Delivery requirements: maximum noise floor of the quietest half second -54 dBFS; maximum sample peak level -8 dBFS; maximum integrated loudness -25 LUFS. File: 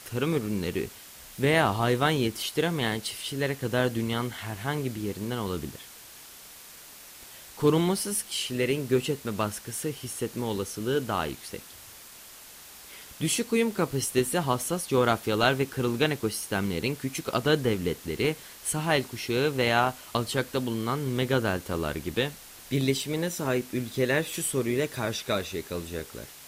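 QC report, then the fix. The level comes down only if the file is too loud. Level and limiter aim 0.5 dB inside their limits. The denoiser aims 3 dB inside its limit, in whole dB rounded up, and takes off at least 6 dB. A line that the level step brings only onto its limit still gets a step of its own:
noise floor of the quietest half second -48 dBFS: fail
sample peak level -9.0 dBFS: pass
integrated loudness -28.0 LUFS: pass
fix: noise reduction 9 dB, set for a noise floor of -48 dBFS

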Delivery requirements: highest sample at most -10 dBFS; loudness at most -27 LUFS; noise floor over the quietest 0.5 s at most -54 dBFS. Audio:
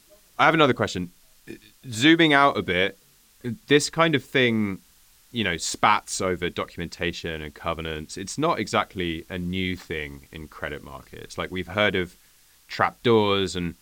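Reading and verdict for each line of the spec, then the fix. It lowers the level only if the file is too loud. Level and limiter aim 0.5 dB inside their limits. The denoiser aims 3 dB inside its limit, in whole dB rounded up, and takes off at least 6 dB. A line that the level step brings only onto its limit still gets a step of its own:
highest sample -4.5 dBFS: fail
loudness -23.5 LUFS: fail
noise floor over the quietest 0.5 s -57 dBFS: pass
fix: trim -4 dB; peak limiter -10.5 dBFS

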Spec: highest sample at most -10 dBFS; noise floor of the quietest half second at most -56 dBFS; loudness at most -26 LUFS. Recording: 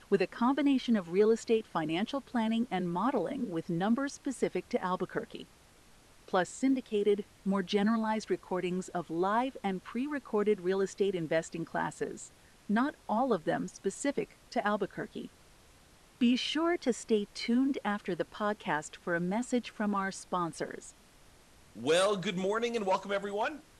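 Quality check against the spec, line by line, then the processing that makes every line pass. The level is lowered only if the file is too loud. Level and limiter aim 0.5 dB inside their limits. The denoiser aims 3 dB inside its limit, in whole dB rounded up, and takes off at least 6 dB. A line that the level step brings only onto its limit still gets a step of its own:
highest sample -16.0 dBFS: pass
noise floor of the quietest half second -60 dBFS: pass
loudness -32.0 LUFS: pass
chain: none needed

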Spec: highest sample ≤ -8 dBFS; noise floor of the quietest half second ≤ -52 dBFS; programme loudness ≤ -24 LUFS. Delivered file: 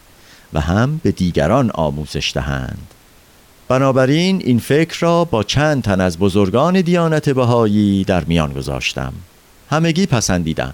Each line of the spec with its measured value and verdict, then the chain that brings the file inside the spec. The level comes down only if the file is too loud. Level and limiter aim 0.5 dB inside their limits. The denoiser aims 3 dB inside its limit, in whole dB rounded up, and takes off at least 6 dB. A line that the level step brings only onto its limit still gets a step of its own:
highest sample -3.5 dBFS: fail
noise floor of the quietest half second -47 dBFS: fail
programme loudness -16.0 LUFS: fail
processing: trim -8.5 dB

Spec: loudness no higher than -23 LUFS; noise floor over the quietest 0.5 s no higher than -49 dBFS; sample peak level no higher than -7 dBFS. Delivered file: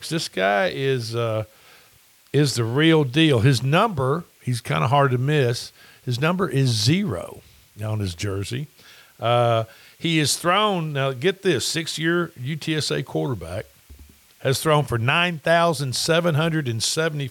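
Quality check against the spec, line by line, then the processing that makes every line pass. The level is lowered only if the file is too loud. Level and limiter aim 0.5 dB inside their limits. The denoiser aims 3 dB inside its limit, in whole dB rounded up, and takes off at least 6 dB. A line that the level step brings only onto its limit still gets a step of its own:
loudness -21.5 LUFS: fail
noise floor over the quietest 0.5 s -55 dBFS: pass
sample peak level -5.0 dBFS: fail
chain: trim -2 dB; peak limiter -7.5 dBFS

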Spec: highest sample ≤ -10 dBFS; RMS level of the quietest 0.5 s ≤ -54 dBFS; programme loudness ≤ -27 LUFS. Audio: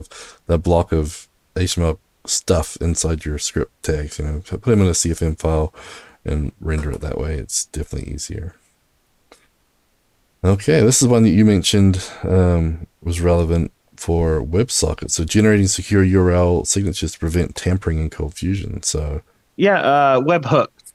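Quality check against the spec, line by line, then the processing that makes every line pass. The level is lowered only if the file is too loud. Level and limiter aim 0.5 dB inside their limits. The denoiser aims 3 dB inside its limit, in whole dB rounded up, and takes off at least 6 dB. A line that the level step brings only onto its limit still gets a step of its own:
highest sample -4.0 dBFS: fail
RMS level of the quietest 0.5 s -62 dBFS: pass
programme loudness -18.0 LUFS: fail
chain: trim -9.5 dB

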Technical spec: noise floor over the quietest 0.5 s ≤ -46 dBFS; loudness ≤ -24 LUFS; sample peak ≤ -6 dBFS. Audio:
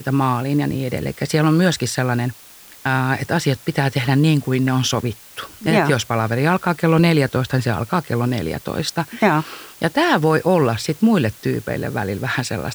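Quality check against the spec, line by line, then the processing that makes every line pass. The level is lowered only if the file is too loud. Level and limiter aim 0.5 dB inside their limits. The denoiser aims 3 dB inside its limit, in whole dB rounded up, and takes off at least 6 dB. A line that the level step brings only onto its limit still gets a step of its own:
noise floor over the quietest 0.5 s -43 dBFS: fail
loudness -19.0 LUFS: fail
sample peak -4.5 dBFS: fail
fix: trim -5.5 dB

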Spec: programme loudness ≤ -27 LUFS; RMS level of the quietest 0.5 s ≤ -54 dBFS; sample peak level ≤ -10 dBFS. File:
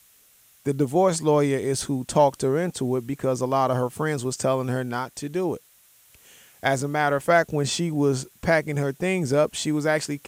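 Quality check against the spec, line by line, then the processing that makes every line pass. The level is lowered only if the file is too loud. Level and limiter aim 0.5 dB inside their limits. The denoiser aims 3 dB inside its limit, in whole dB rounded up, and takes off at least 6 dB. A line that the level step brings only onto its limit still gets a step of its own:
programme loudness -24.0 LUFS: fail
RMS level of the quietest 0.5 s -57 dBFS: pass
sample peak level -7.5 dBFS: fail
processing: trim -3.5 dB

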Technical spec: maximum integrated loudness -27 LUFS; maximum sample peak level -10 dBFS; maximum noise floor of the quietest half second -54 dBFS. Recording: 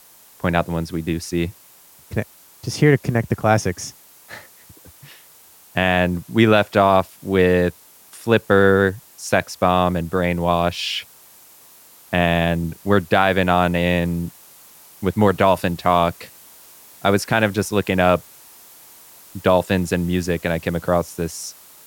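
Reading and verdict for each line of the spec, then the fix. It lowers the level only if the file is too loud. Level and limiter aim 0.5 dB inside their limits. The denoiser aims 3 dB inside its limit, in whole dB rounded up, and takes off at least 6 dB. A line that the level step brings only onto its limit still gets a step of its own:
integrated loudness -19.5 LUFS: fail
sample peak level -2.5 dBFS: fail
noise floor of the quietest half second -49 dBFS: fail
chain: trim -8 dB

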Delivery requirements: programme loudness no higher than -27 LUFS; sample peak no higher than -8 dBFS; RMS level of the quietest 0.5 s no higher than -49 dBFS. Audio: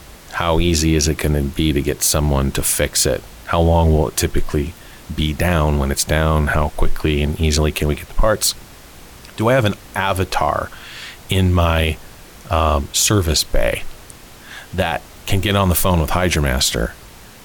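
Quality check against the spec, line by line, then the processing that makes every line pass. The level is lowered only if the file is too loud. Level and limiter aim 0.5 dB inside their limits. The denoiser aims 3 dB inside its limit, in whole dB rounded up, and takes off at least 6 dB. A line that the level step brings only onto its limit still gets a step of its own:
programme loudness -18.0 LUFS: fail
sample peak -5.0 dBFS: fail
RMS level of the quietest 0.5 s -40 dBFS: fail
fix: trim -9.5 dB

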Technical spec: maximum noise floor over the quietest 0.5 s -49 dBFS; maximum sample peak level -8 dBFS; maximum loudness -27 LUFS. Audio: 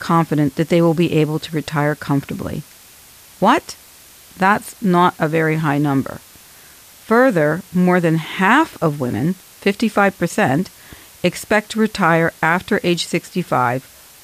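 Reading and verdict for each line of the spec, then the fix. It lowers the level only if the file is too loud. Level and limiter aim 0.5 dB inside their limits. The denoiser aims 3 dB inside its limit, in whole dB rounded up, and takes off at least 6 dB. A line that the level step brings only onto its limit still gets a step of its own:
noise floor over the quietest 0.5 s -44 dBFS: fail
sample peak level -2.5 dBFS: fail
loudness -17.5 LUFS: fail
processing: trim -10 dB

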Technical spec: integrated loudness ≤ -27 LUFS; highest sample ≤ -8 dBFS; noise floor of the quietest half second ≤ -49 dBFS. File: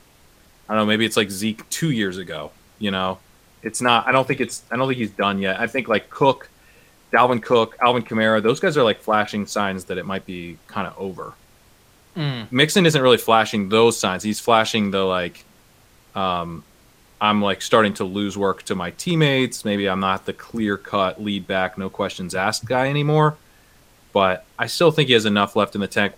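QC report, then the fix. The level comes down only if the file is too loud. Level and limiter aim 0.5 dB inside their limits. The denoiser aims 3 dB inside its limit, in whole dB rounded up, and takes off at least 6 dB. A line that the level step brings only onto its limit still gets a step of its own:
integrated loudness -20.0 LUFS: fail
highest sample -2.0 dBFS: fail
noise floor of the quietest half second -53 dBFS: pass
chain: trim -7.5 dB

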